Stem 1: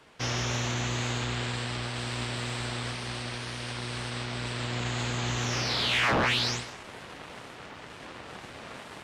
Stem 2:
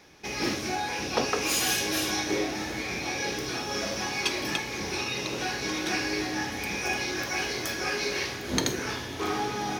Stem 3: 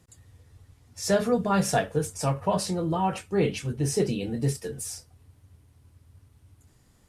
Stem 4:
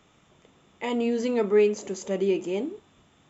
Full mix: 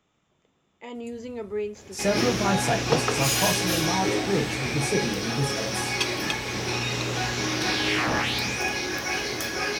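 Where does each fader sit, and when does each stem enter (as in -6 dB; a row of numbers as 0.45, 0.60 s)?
-1.5, +2.0, -1.5, -10.0 dB; 1.95, 1.75, 0.95, 0.00 s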